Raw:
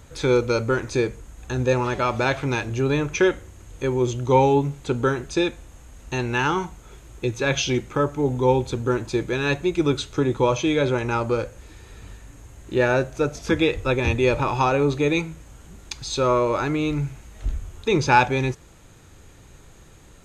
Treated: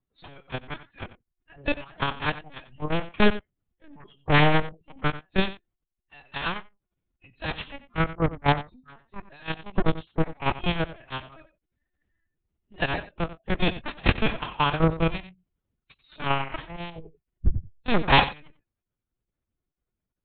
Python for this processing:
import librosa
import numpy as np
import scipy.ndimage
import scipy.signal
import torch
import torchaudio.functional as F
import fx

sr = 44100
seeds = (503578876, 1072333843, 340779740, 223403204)

p1 = fx.spec_quant(x, sr, step_db=15)
p2 = fx.noise_reduce_blind(p1, sr, reduce_db=28)
p3 = fx.low_shelf(p2, sr, hz=320.0, db=5.0)
p4 = fx.cheby_harmonics(p3, sr, harmonics=(7,), levels_db=(-16,), full_scale_db=-3.5)
p5 = 10.0 ** (-14.5 / 20.0) * (np.abs((p4 / 10.0 ** (-14.5 / 20.0) + 3.0) % 4.0 - 2.0) - 1.0)
p6 = fx.lpc_vocoder(p5, sr, seeds[0], excitation='pitch_kept', order=8)
p7 = p6 + fx.echo_single(p6, sr, ms=91, db=-15.0, dry=0)
p8 = fx.pitch_keep_formants(p7, sr, semitones=2.0)
y = p8 * librosa.db_to_amplitude(7.5)